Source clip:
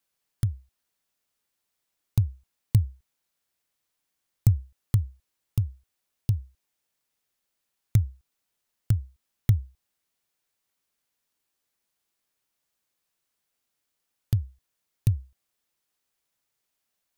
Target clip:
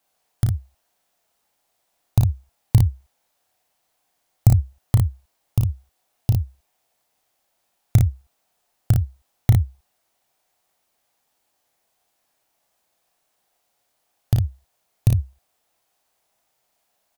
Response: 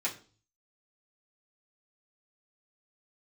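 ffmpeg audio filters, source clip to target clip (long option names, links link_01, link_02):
-af "equalizer=frequency=720:width=1.8:gain=12,aecho=1:1:33|57:0.531|0.668,volume=5.5dB"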